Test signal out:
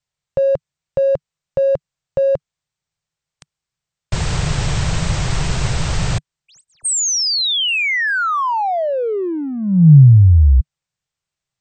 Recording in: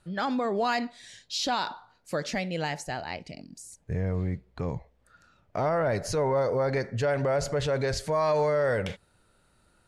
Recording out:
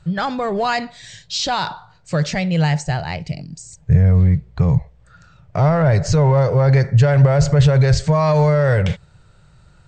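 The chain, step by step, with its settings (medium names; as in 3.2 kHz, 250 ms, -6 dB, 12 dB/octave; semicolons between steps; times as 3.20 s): in parallel at -10 dB: saturation -33 dBFS; on the sum: brick-wall FIR low-pass 8.6 kHz; resonant low shelf 190 Hz +7.5 dB, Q 3; trim +7 dB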